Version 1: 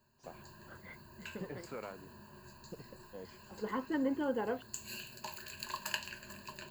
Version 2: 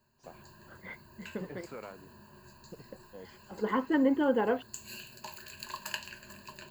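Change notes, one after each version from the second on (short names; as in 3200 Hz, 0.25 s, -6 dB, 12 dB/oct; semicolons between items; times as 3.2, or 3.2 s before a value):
second voice +7.5 dB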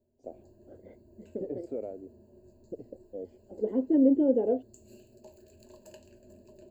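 first voice +6.5 dB; master: add EQ curve 110 Hz 0 dB, 160 Hz -14 dB, 260 Hz +5 dB, 640 Hz +2 dB, 1100 Hz -30 dB, 1700 Hz -27 dB, 2400 Hz -24 dB, 4700 Hz -21 dB, 7600 Hz -13 dB, 11000 Hz -20 dB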